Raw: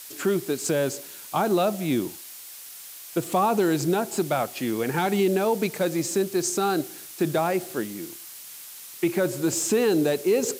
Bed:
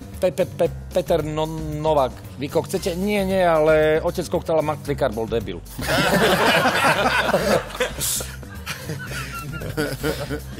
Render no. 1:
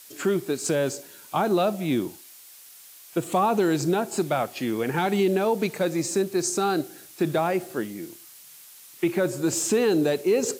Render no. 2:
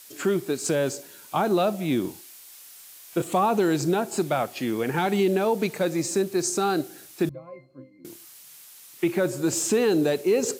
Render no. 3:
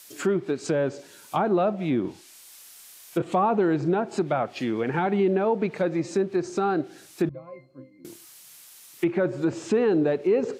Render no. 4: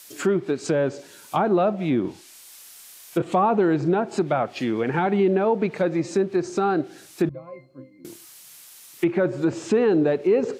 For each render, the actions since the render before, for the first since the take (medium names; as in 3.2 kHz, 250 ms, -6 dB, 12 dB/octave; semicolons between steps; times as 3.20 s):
noise print and reduce 6 dB
2.01–3.22 s: doubling 32 ms -5 dB; 7.29–8.05 s: pitch-class resonator C, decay 0.29 s
low-pass that closes with the level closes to 1.9 kHz, closed at -20.5 dBFS
trim +2.5 dB